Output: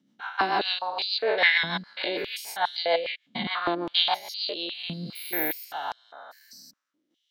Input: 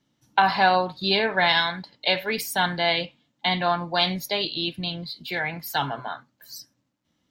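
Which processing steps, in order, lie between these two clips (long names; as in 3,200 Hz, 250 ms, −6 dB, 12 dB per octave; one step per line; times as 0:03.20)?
spectrum averaged block by block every 200 ms
rotating-speaker cabinet horn 6.7 Hz, later 0.85 Hz, at 0:04.34
0:05.15–0:05.65: bad sample-rate conversion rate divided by 3×, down filtered, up zero stuff
high-pass on a step sequencer 4.9 Hz 210–5,000 Hz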